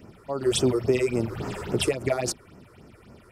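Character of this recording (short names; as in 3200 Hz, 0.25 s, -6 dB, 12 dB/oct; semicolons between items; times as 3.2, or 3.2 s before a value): phasing stages 6, 3.6 Hz, lowest notch 180–3700 Hz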